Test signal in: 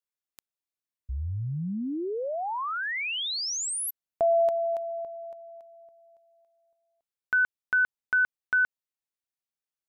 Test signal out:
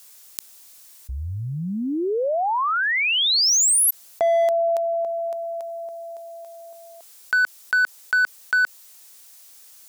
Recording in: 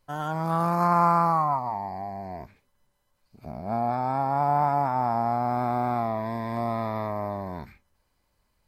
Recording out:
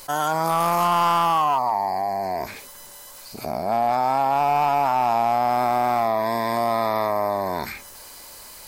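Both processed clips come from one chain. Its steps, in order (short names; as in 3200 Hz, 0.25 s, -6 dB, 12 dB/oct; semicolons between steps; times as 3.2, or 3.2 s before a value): tone controls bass -14 dB, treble +11 dB; in parallel at -3 dB: wavefolder -21 dBFS; on the sum: fast leveller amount 50%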